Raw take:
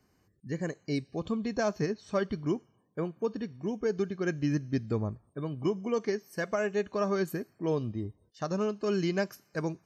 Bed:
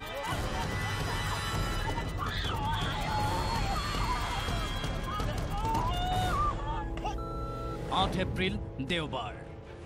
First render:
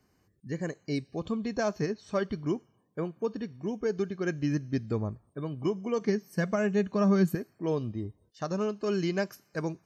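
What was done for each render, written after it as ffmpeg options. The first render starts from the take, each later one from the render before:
-filter_complex "[0:a]asettb=1/sr,asplit=3[a][b][c];[a]atrim=end=6.014[d];[b]atrim=start=6.01:end=7.35,asetpts=PTS-STARTPTS,afade=t=in:d=0.004:c=qsin,afade=t=out:st=1.336:d=0.004:c=qsin,equalizer=f=180:t=o:w=0.77:g=12[e];[c]atrim=start=7.346[f];[d][e]acrossfade=d=0.004:c1=hsin:c2=qsin[g];[g][f]acrossfade=d=0.004:c1=qsin:c2=hsin"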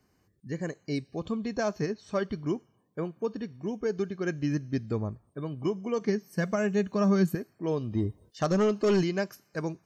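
-filter_complex "[0:a]asettb=1/sr,asplit=3[a][b][c];[a]atrim=end=6.424[d];[b]atrim=start=6.42:end=7.27,asetpts=PTS-STARTPTS,afade=t=in:d=0.004:c=qsin,afade=t=out:st=0.846:d=0.004:c=qsin,highshelf=f=8.6k:g=10[e];[c]atrim=start=7.266[f];[d][e]acrossfade=d=0.004:c1=hsin:c2=qsin[g];[g][f]acrossfade=d=0.004:c1=qsin:c2=hsin,asplit=3[h][i][j];[h]afade=t=out:st=7.91:d=0.02[k];[i]aeval=exprs='0.119*sin(PI/2*1.58*val(0)/0.119)':c=same,afade=t=in:st=7.91:d=0.02,afade=t=out:st=9.02:d=0.02[l];[j]afade=t=in:st=9.02:d=0.02[m];[k][l][m]amix=inputs=3:normalize=0"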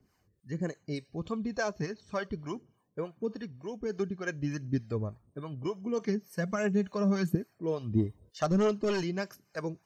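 -filter_complex "[0:a]acrossover=split=500[a][b];[a]aeval=exprs='val(0)*(1-0.7/2+0.7/2*cos(2*PI*3.4*n/s))':c=same[c];[b]aeval=exprs='val(0)*(1-0.7/2-0.7/2*cos(2*PI*3.4*n/s))':c=same[d];[c][d]amix=inputs=2:normalize=0,aphaser=in_gain=1:out_gain=1:delay=2.2:decay=0.38:speed=1.5:type=triangular"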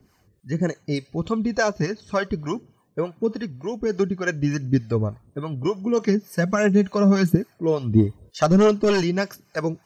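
-af "volume=10.5dB"

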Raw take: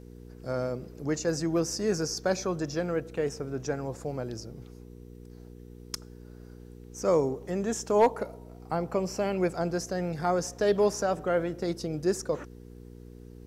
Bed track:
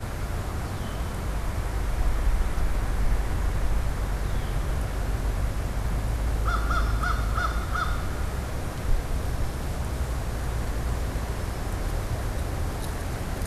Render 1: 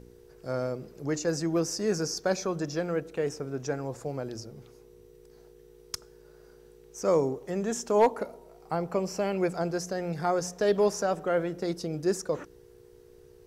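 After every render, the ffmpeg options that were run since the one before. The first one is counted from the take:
-af "bandreject=f=60:t=h:w=4,bandreject=f=120:t=h:w=4,bandreject=f=180:t=h:w=4,bandreject=f=240:t=h:w=4,bandreject=f=300:t=h:w=4"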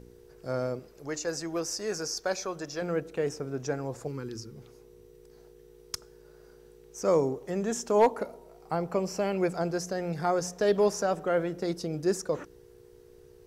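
-filter_complex "[0:a]asettb=1/sr,asplit=3[a][b][c];[a]atrim=end=0.794[d];[b]atrim=start=0.79:end=2.82,asetpts=PTS-STARTPTS,afade=t=in:d=0.004:c=qsin,afade=t=out:st=2.026:d=0.004:c=qsin,equalizer=f=180:t=o:w=2.1:g=-11[e];[c]atrim=start=2.816[f];[d][e]acrossfade=d=0.004:c1=hsin:c2=qsin[g];[g][f]acrossfade=d=0.004:c1=qsin:c2=hsin,asettb=1/sr,asplit=3[h][i][j];[h]atrim=end=4.074[k];[i]atrim=start=4.07:end=4.56,asetpts=PTS-STARTPTS,afade=t=in:d=0.004:c=qsin,afade=t=out:st=0.486:d=0.004:c=qsin,asuperstop=centerf=660:order=4:qfactor=1.3[l];[j]atrim=start=4.556[m];[k][l]acrossfade=d=0.004:c1=hsin:c2=qsin[n];[n][m]acrossfade=d=0.004:c1=qsin:c2=hsin"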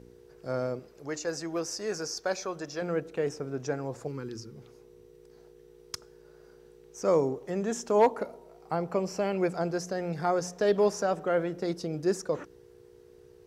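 -af "highpass=f=73:p=1,highshelf=f=8.2k:g=-7.5"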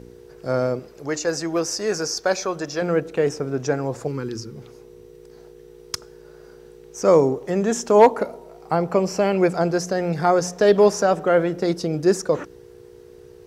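-af "volume=9.5dB"

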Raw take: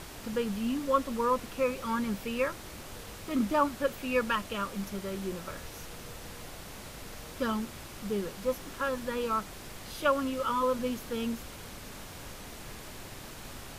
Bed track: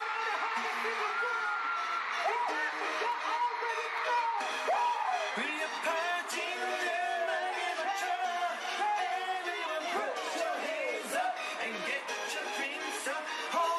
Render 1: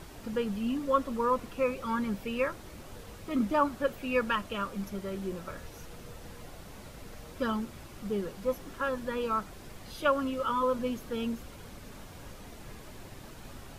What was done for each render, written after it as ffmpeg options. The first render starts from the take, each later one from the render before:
-af "afftdn=nr=7:nf=-45"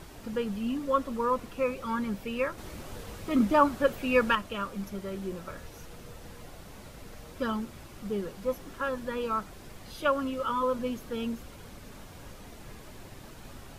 -filter_complex "[0:a]asplit=3[a][b][c];[a]atrim=end=2.582[d];[b]atrim=start=2.578:end=4.352,asetpts=PTS-STARTPTS,volume=4.5dB[e];[c]atrim=start=4.348[f];[d][e]acrossfade=d=0.004:c1=hsin:c2=hsin[g];[g][f]acrossfade=d=0.004:c1=hsin:c2=hsin"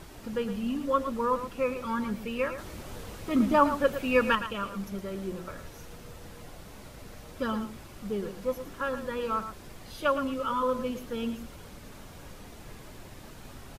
-af "aecho=1:1:114:0.299"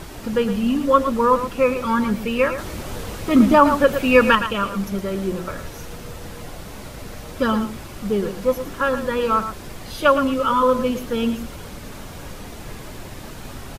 -af "volume=11dB,alimiter=limit=-2dB:level=0:latency=1"

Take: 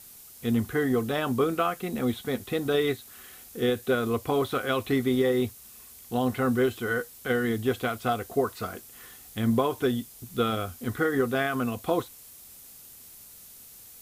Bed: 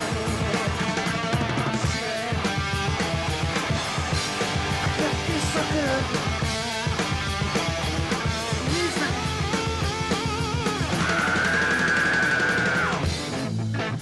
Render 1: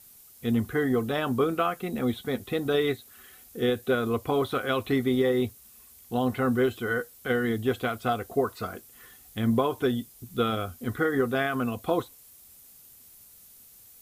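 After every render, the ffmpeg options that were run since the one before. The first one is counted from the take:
-af "afftdn=nr=6:nf=-49"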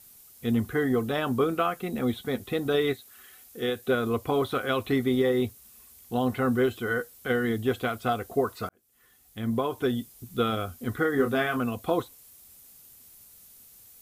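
-filter_complex "[0:a]asettb=1/sr,asplit=3[a][b][c];[a]atrim=end=2.934[d];[b]atrim=start=2.93:end=3.86,asetpts=PTS-STARTPTS,afade=t=in:d=0.004:c=qsin,afade=t=out:st=0.926:d=0.004:c=qsin,lowshelf=f=440:g=-7[e];[c]atrim=start=3.856[f];[d][e]acrossfade=d=0.004:c1=hsin:c2=qsin[g];[g][f]acrossfade=d=0.004:c1=qsin:c2=hsin,asettb=1/sr,asplit=3[h][i][j];[h]atrim=end=11.154[k];[i]atrim=start=11.15:end=11.58,asetpts=PTS-STARTPTS,afade=t=in:d=0.004:c=qsin,afade=t=out:st=0.426:d=0.004:c=qsin,asplit=2[l][m];[m]adelay=27,volume=-5.5dB[n];[l][n]amix=inputs=2:normalize=0,atrim=end_sample=18963[o];[j]atrim=start=11.576[p];[k][o]acrossfade=d=0.004:c1=hsin:c2=qsin[q];[q][p]acrossfade=d=0.004:c1=qsin:c2=hsin,asplit=2[r][s];[r]atrim=end=8.69,asetpts=PTS-STARTPTS,afade=t=out:st=8.686:d=0.004:c=hsin[t];[s]atrim=start=8.69,asetpts=PTS-STARTPTS,afade=t=in:d=1.31[u];[t][u]concat=n=2:v=0:a=1"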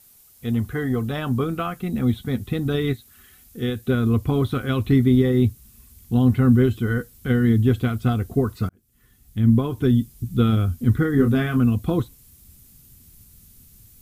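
-af "asubboost=boost=9.5:cutoff=200"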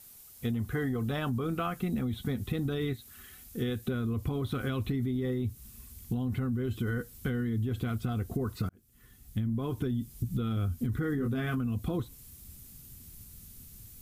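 -af "alimiter=limit=-17dB:level=0:latency=1:release=31,acompressor=threshold=-28dB:ratio=6"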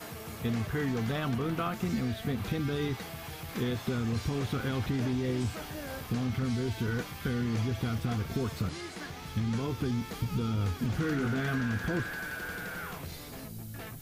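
-filter_complex "[1:a]volume=-16.5dB[a];[0:a][a]amix=inputs=2:normalize=0"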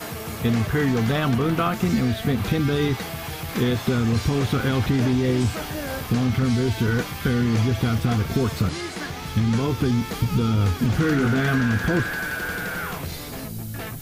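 -af "volume=10dB"

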